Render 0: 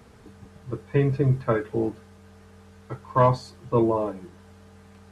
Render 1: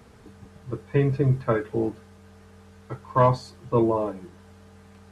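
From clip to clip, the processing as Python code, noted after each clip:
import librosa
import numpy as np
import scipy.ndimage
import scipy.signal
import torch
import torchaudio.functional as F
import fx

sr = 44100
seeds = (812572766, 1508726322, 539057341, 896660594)

y = x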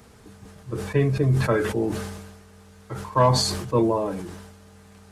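y = fx.high_shelf(x, sr, hz=4900.0, db=8.5)
y = fx.sustainer(y, sr, db_per_s=45.0)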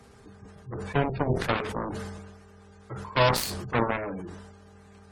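y = fx.cheby_harmonics(x, sr, harmonics=(7,), levels_db=(-10,), full_scale_db=-7.5)
y = fx.dmg_buzz(y, sr, base_hz=400.0, harmonics=4, level_db=-58.0, tilt_db=-5, odd_only=False)
y = fx.spec_gate(y, sr, threshold_db=-30, keep='strong')
y = y * 10.0 ** (-4.5 / 20.0)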